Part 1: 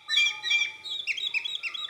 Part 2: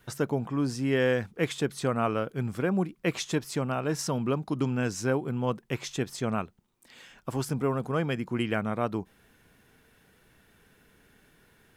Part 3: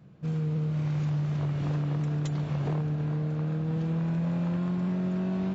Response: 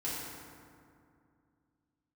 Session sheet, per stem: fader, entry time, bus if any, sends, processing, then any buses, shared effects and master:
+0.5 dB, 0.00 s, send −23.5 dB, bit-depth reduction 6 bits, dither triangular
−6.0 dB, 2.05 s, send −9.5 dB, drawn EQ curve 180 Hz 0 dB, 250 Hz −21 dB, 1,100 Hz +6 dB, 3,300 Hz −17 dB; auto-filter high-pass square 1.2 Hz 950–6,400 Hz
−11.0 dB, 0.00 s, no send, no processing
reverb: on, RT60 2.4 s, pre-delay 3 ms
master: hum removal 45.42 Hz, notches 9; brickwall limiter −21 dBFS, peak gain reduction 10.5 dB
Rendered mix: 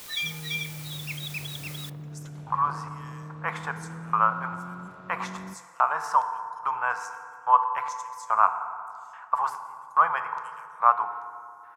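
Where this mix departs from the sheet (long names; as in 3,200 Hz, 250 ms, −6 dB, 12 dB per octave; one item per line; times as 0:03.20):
stem 1 +0.5 dB → −8.0 dB
stem 2 −6.0 dB → +5.0 dB
master: missing brickwall limiter −21 dBFS, peak gain reduction 10.5 dB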